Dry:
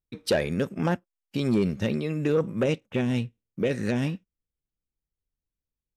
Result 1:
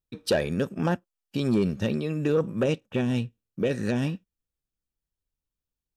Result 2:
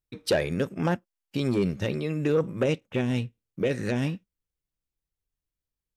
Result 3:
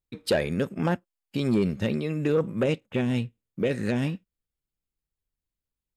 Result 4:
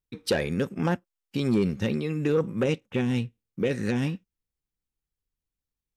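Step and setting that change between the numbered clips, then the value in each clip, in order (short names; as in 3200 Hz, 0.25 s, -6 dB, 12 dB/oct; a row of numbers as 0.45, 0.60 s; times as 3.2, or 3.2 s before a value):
notch, frequency: 2100, 220, 5800, 620 Hz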